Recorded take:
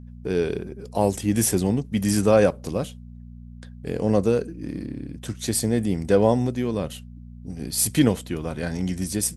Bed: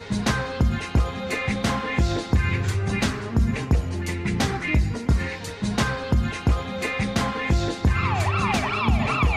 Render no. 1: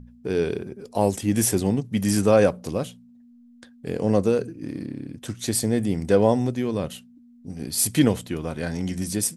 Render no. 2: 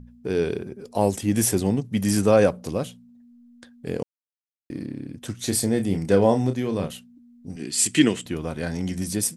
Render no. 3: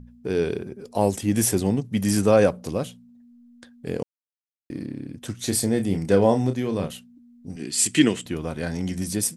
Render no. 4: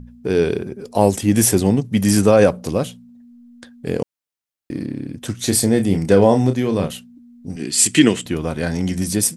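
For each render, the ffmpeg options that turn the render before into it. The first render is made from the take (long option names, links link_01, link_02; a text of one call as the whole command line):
ffmpeg -i in.wav -af "bandreject=frequency=60:width_type=h:width=4,bandreject=frequency=120:width_type=h:width=4,bandreject=frequency=180:width_type=h:width=4" out.wav
ffmpeg -i in.wav -filter_complex "[0:a]asettb=1/sr,asplit=3[link_01][link_02][link_03];[link_01]atrim=end=5.374[link_04];[link_02]atrim=start=5.37:end=6.92,asetpts=PTS-STARTPTS,afade=type=in:duration=0.004:curve=qsin,afade=type=out:start_time=1.546:duration=0.004:curve=qsin,asplit=2[link_05][link_06];[link_06]adelay=31,volume=-8dB[link_07];[link_05][link_07]amix=inputs=2:normalize=0,atrim=end_sample=68355[link_08];[link_03]atrim=start=6.916[link_09];[link_04][link_08]acrossfade=duration=0.004:curve1=hsin:curve2=qsin[link_10];[link_10][link_09]acrossfade=duration=0.004:curve1=qsin:curve2=hsin,asettb=1/sr,asplit=3[link_11][link_12][link_13];[link_11]atrim=end=7.564[link_14];[link_12]atrim=start=7.56:end=8.26,asetpts=PTS-STARTPTS,afade=type=in:duration=0.004:curve=qsin,afade=type=out:start_time=0.696:duration=0.004:curve=qsin,highpass=180,equalizer=frequency=350:width_type=q:width=4:gain=6,equalizer=frequency=540:width_type=q:width=4:gain=-9,equalizer=frequency=820:width_type=q:width=4:gain=-8,equalizer=frequency=1900:width_type=q:width=4:gain=6,equalizer=frequency=2800:width_type=q:width=4:gain=10,equalizer=frequency=7600:width_type=q:width=4:gain=8,lowpass=frequency=9400:width=0.5412,lowpass=frequency=9400:width=1.3066[link_15];[link_13]atrim=start=8.256[link_16];[link_14][link_15]acrossfade=duration=0.004:curve1=hsin:curve2=qsin[link_17];[link_17][link_16]acrossfade=duration=0.004:curve1=qsin:curve2=hsin,asplit=3[link_18][link_19][link_20];[link_18]atrim=end=4.03,asetpts=PTS-STARTPTS,afade=type=out:start_time=4.026:duration=0.004:curve=hsin[link_21];[link_19]atrim=start=4.03:end=4.7,asetpts=PTS-STARTPTS,volume=0[link_22];[link_20]atrim=start=4.7,asetpts=PTS-STARTPTS,afade=type=in:duration=0.004:curve=hsin[link_23];[link_21][link_22][link_23]concat=n=3:v=0:a=1" out.wav
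ffmpeg -i in.wav -af anull out.wav
ffmpeg -i in.wav -af "volume=6.5dB,alimiter=limit=-1dB:level=0:latency=1" out.wav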